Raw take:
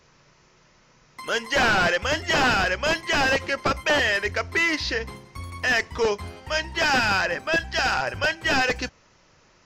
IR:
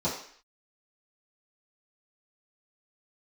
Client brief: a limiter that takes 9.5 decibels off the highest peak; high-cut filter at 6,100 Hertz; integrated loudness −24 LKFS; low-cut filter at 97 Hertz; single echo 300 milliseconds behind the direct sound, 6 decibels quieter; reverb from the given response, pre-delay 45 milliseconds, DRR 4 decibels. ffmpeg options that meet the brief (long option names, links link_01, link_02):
-filter_complex "[0:a]highpass=97,lowpass=6100,alimiter=limit=-21.5dB:level=0:latency=1,aecho=1:1:300:0.501,asplit=2[link_01][link_02];[1:a]atrim=start_sample=2205,adelay=45[link_03];[link_02][link_03]afir=irnorm=-1:irlink=0,volume=-13dB[link_04];[link_01][link_04]amix=inputs=2:normalize=0,volume=2.5dB"